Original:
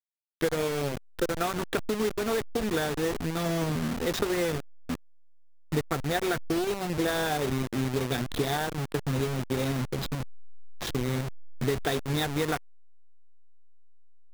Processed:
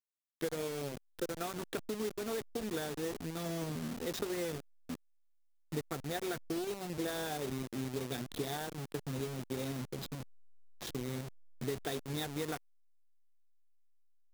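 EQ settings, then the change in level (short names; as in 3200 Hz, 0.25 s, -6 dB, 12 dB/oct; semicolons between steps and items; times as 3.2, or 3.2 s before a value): low shelf 110 Hz -12 dB; bell 1400 Hz -6 dB 2.9 oct; -6.0 dB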